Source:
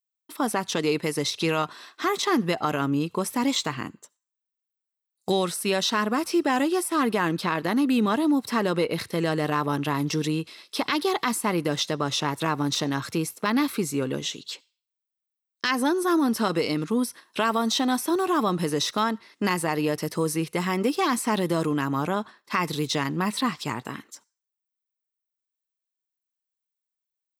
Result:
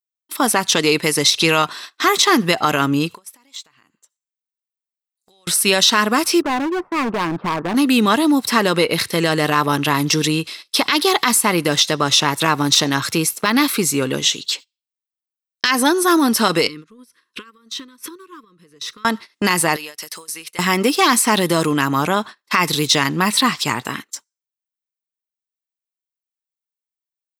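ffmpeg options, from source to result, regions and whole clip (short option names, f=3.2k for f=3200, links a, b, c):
-filter_complex "[0:a]asettb=1/sr,asplit=3[a][b][c];[a]atrim=end=3.144[d];[b]atrim=start=3.14:end=5.47,asetpts=PTS-STARTPTS,afade=t=in:d=0.004:c=qsin,afade=t=out:st=2.326:d=0.004:c=qsin,lowshelf=f=400:g=-8.5,acompressor=threshold=-42dB:ratio=8:attack=3.2:release=140:knee=1:detection=peak[e];[c]atrim=start=5.466[f];[d][e]acrossfade=d=0.004:c1=hsin:c2=qsin[g];[g][f]acrossfade=d=0.004:c1=qsin:c2=hsin,asettb=1/sr,asplit=3[h][i][j];[h]atrim=end=6.414[k];[i]atrim=start=6.41:end=7.75,asetpts=PTS-STARTPTS,afade=t=in:d=0.004:c=qsin,afade=t=out:st=1.336:d=0.004:c=qsin,deesser=0.5,lowpass=f=1.3k:w=0.5412,lowpass=f=1.3k:w=1.3066,asoftclip=type=hard:threshold=-25.5dB[l];[j]atrim=start=7.746[m];[k][l]acrossfade=d=0.004:c1=hsin:c2=qsin[n];[n][m]acrossfade=d=0.004:c1=qsin:c2=hsin,asettb=1/sr,asplit=3[o][p][q];[o]atrim=end=16.674[r];[p]atrim=start=16.67:end=19.05,asetpts=PTS-STARTPTS,afade=t=in:d=0.004:c=qsin,afade=t=out:st=2.376:d=0.004:c=qsin,highshelf=f=3.6k:g=-8.5,acompressor=threshold=-37dB:ratio=12:attack=3.2:release=140:knee=1:detection=peak,asuperstop=centerf=720:order=12:qfactor=1.6[s];[q]atrim=start=19.046[t];[r][s]acrossfade=d=0.004:c1=hsin:c2=qsin[u];[u][t]acrossfade=d=0.004:c1=qsin:c2=hsin,asettb=1/sr,asplit=3[v][w][x];[v]atrim=end=19.764[y];[w]atrim=start=19.76:end=20.59,asetpts=PTS-STARTPTS,afade=t=in:d=0.004:c=qsin,afade=t=out:st=0.826:d=0.004:c=qsin,highpass=f=1.5k:p=1,acompressor=threshold=-38dB:ratio=8:attack=3.2:release=140:knee=1:detection=peak[z];[x]atrim=start=20.586[aa];[y][z]acrossfade=d=0.004:c1=hsin:c2=qsin[ab];[ab][aa]acrossfade=d=0.004:c1=qsin:c2=hsin,tiltshelf=f=1.3k:g=-4.5,agate=range=-19dB:threshold=-41dB:ratio=16:detection=peak,alimiter=level_in=11.5dB:limit=-1dB:release=50:level=0:latency=1,volume=-1dB"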